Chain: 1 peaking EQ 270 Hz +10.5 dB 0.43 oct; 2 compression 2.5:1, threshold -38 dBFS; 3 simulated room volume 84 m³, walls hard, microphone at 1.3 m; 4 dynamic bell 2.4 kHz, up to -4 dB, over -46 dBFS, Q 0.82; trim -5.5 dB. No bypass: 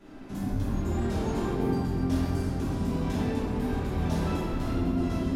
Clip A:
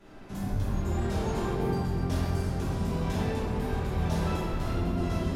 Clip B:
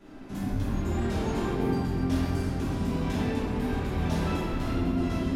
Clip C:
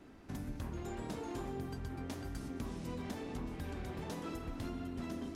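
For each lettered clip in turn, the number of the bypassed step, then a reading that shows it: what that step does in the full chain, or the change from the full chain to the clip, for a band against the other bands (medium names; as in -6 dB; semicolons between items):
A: 1, 250 Hz band -4.5 dB; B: 4, 2 kHz band +2.5 dB; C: 3, 125 Hz band -4.5 dB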